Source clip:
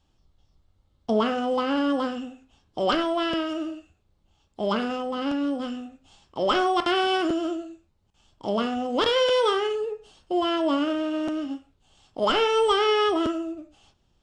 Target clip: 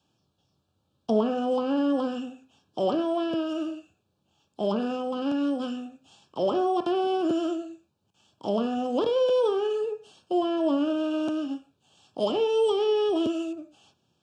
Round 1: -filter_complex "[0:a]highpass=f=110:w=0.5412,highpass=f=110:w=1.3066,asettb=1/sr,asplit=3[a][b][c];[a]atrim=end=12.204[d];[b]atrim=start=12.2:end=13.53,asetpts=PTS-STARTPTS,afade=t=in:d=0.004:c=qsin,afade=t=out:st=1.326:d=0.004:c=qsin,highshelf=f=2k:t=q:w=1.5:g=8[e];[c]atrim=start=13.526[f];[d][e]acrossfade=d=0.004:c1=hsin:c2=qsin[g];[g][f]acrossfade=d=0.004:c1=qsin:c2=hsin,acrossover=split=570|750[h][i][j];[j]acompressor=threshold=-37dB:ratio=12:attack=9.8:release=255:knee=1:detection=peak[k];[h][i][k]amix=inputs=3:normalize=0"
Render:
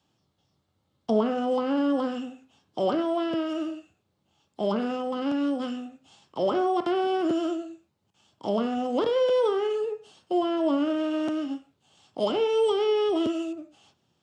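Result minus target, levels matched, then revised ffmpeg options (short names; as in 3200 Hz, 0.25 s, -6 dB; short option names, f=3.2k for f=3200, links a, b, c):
2000 Hz band +3.0 dB
-filter_complex "[0:a]highpass=f=110:w=0.5412,highpass=f=110:w=1.3066,asettb=1/sr,asplit=3[a][b][c];[a]atrim=end=12.204[d];[b]atrim=start=12.2:end=13.53,asetpts=PTS-STARTPTS,afade=t=in:d=0.004:c=qsin,afade=t=out:st=1.326:d=0.004:c=qsin,highshelf=f=2k:t=q:w=1.5:g=8[e];[c]atrim=start=13.526[f];[d][e]acrossfade=d=0.004:c1=hsin:c2=qsin[g];[g][f]acrossfade=d=0.004:c1=qsin:c2=hsin,acrossover=split=570|750[h][i][j];[j]acompressor=threshold=-37dB:ratio=12:attack=9.8:release=255:knee=1:detection=peak,asuperstop=centerf=2000:order=20:qfactor=3.8[k];[h][i][k]amix=inputs=3:normalize=0"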